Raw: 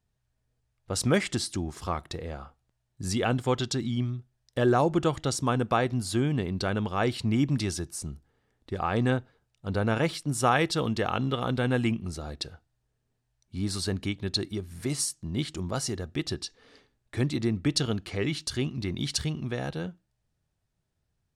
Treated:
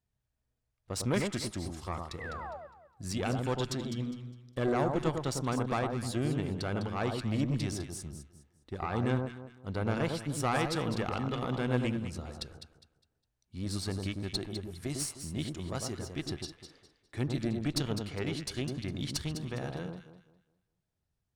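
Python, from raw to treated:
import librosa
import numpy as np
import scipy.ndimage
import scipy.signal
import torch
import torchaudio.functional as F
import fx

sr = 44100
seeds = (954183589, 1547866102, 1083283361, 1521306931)

y = fx.tube_stage(x, sr, drive_db=18.0, bias=0.65)
y = fx.spec_paint(y, sr, seeds[0], shape='fall', start_s=2.2, length_s=0.37, low_hz=540.0, high_hz=2100.0, level_db=-39.0)
y = fx.echo_alternate(y, sr, ms=102, hz=1300.0, feedback_pct=53, wet_db=-4)
y = y * 10.0 ** (-3.5 / 20.0)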